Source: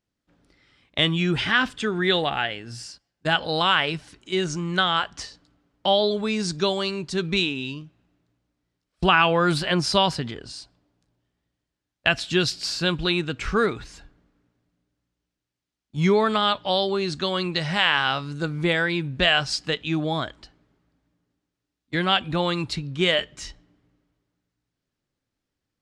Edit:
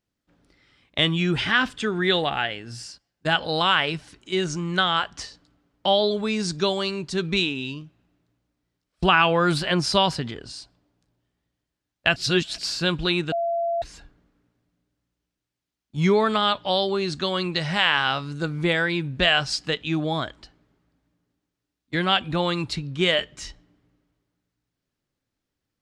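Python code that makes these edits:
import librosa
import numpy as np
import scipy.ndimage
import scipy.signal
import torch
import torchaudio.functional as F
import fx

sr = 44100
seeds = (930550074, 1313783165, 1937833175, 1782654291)

y = fx.edit(x, sr, fx.reverse_span(start_s=12.16, length_s=0.42),
    fx.bleep(start_s=13.32, length_s=0.5, hz=680.0, db=-21.5), tone=tone)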